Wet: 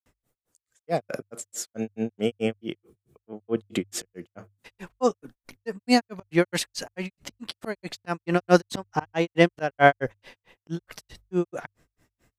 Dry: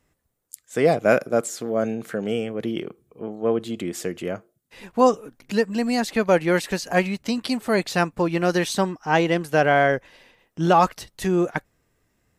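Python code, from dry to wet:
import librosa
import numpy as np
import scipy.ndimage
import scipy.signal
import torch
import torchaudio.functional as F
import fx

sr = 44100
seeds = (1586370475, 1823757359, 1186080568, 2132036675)

y = fx.auto_swell(x, sr, attack_ms=264.0)
y = fx.granulator(y, sr, seeds[0], grain_ms=146.0, per_s=4.6, spray_ms=100.0, spread_st=0)
y = fx.hum_notches(y, sr, base_hz=50, count=2)
y = y * 10.0 ** (6.5 / 20.0)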